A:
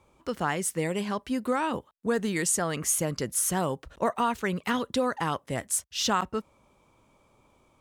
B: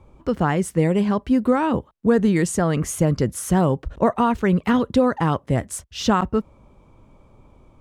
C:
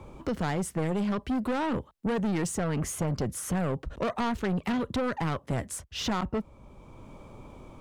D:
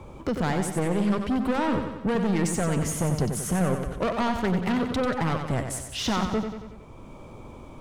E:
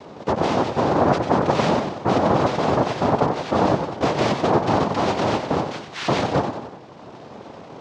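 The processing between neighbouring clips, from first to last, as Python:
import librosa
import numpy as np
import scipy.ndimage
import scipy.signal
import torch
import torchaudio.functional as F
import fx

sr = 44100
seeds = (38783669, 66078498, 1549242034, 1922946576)

y1 = fx.tilt_eq(x, sr, slope=-3.0)
y1 = y1 * 10.0 ** (5.5 / 20.0)
y2 = 10.0 ** (-21.5 / 20.0) * np.tanh(y1 / 10.0 ** (-21.5 / 20.0))
y2 = fx.band_squash(y2, sr, depth_pct=40)
y2 = y2 * 10.0 ** (-3.5 / 20.0)
y3 = fx.echo_feedback(y2, sr, ms=92, feedback_pct=56, wet_db=-7.0)
y3 = y3 * 10.0 ** (3.0 / 20.0)
y4 = fx.noise_vocoder(y3, sr, seeds[0], bands=2)
y4 = fx.air_absorb(y4, sr, metres=210.0)
y4 = y4 * 10.0 ** (6.5 / 20.0)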